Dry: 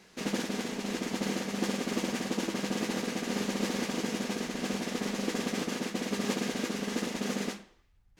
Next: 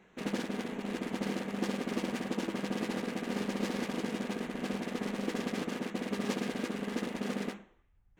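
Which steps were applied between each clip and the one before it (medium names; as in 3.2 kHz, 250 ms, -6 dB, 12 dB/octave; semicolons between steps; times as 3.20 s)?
local Wiener filter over 9 samples; trim -2 dB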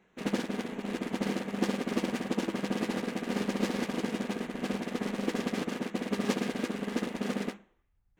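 upward expansion 1.5:1, over -49 dBFS; trim +5 dB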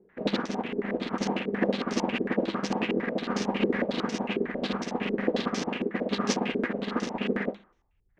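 step-sequenced low-pass 11 Hz 410–5800 Hz; trim +1.5 dB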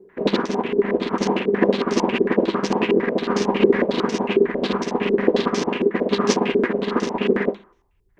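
small resonant body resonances 390/1000 Hz, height 10 dB, ringing for 45 ms; trim +6 dB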